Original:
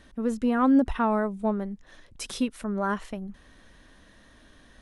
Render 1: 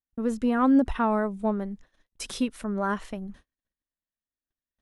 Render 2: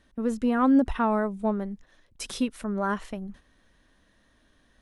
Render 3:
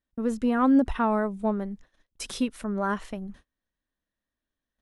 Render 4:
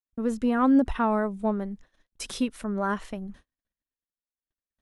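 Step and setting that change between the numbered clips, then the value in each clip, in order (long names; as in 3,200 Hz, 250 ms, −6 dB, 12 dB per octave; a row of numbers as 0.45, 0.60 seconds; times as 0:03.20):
noise gate, range: −47, −9, −34, −60 decibels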